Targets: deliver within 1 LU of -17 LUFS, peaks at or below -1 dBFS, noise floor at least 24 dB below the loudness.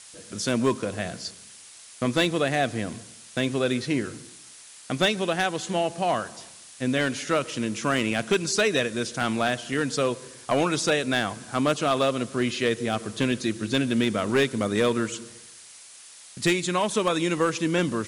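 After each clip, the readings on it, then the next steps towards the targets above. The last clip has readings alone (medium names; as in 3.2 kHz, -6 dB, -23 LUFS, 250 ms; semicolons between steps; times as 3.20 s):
clipped samples 0.4%; clipping level -14.5 dBFS; noise floor -47 dBFS; noise floor target -50 dBFS; loudness -25.5 LUFS; peak level -14.5 dBFS; loudness target -17.0 LUFS
-> clip repair -14.5 dBFS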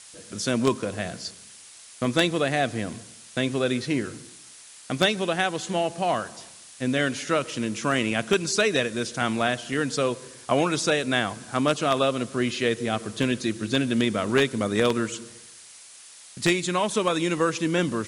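clipped samples 0.0%; noise floor -47 dBFS; noise floor target -49 dBFS
-> noise reduction 6 dB, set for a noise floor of -47 dBFS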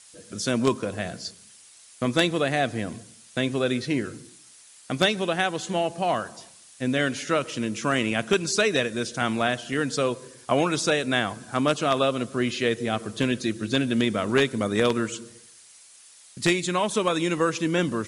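noise floor -51 dBFS; loudness -25.0 LUFS; peak level -5.5 dBFS; loudness target -17.0 LUFS
-> trim +8 dB; peak limiter -1 dBFS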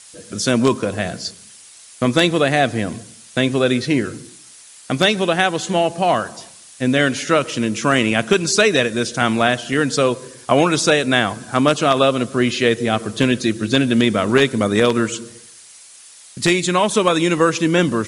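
loudness -17.5 LUFS; peak level -1.0 dBFS; noise floor -43 dBFS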